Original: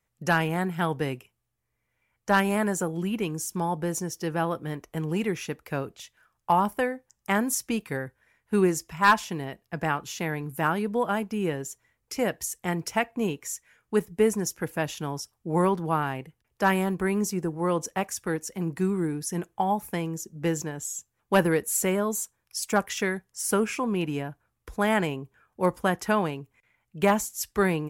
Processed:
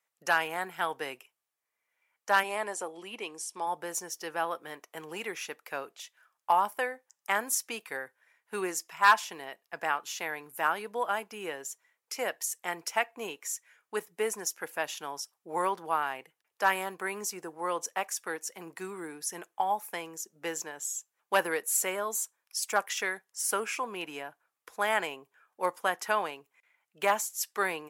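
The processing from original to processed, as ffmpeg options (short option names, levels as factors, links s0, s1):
-filter_complex "[0:a]asettb=1/sr,asplit=3[s0][s1][s2];[s0]atrim=end=2.434[s3];[s1]atrim=start=2.43:end=3.67,asetpts=PTS-STARTPTS,afade=t=in:d=0.004:c=qsin,afade=t=out:st=1.236:d=0.004:c=qsin,highpass=180,equalizer=f=180:t=q:w=4:g=-4,equalizer=f=1500:t=q:w=4:g=-9,equalizer=f=6800:t=q:w=4:g=-7,lowpass=f=9700:w=0.5412,lowpass=f=9700:w=1.3066[s4];[s2]atrim=start=3.666[s5];[s3][s4]acrossfade=d=0.004:c1=hsin:c2=qsin[s6];[s6][s5]acrossfade=d=0.004:c1=qsin:c2=hsin,highpass=650,volume=0.891"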